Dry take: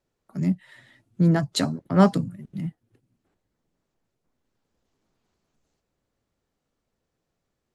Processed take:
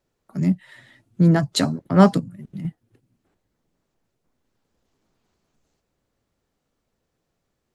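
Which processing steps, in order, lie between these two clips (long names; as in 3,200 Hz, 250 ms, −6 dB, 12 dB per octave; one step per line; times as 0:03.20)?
0:02.19–0:02.65: downward compressor 4 to 1, threshold −34 dBFS, peak gain reduction 10 dB
level +3.5 dB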